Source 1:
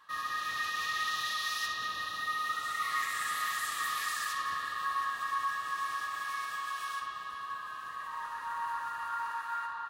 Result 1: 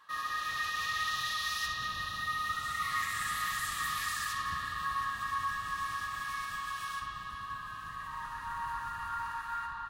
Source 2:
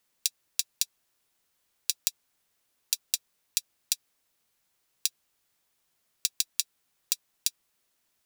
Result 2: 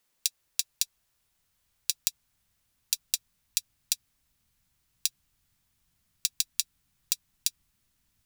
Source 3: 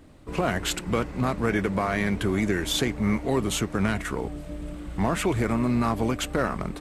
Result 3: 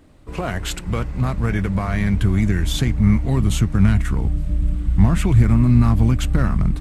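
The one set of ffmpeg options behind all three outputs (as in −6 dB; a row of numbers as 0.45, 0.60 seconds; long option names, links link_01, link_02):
-af "asubboost=boost=11.5:cutoff=140"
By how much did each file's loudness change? −0.5, 0.0, +7.5 LU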